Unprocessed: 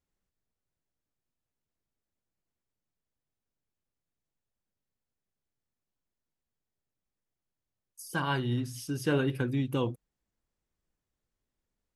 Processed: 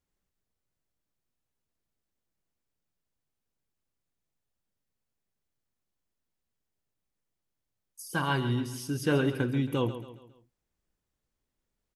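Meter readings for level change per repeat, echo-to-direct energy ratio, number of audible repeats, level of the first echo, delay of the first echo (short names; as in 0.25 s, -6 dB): -7.5 dB, -11.0 dB, 4, -12.0 dB, 0.137 s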